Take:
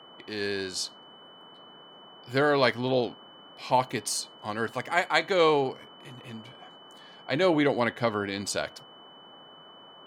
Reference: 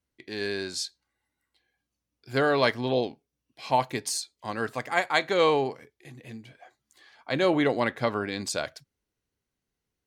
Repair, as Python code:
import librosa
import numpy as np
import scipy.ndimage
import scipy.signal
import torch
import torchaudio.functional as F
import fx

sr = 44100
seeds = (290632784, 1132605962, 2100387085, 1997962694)

y = fx.notch(x, sr, hz=3000.0, q=30.0)
y = fx.noise_reduce(y, sr, print_start_s=0.92, print_end_s=1.42, reduce_db=30.0)